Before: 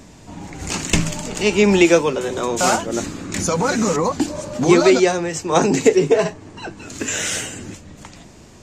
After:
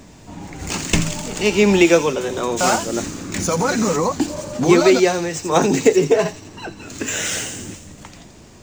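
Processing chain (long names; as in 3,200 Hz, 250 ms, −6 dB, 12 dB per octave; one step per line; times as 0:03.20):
running median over 3 samples
delay with a high-pass on its return 85 ms, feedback 62%, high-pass 4,000 Hz, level −6.5 dB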